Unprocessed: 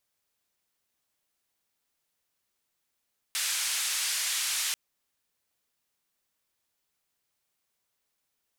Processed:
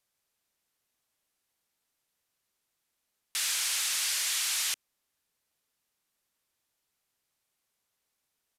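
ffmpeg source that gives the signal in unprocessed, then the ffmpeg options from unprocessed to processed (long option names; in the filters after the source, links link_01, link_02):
-f lavfi -i "anoisesrc=color=white:duration=1.39:sample_rate=44100:seed=1,highpass=frequency=1700,lowpass=frequency=9700,volume=-20.8dB"
-filter_complex "[0:a]acrossover=split=390|2300[link_01][link_02][link_03];[link_02]asoftclip=type=hard:threshold=-39.5dB[link_04];[link_01][link_04][link_03]amix=inputs=3:normalize=0,aresample=32000,aresample=44100"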